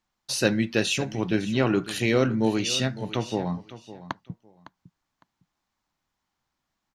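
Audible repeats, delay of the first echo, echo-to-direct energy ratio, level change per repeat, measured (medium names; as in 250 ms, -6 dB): 2, 557 ms, -15.5 dB, -13.5 dB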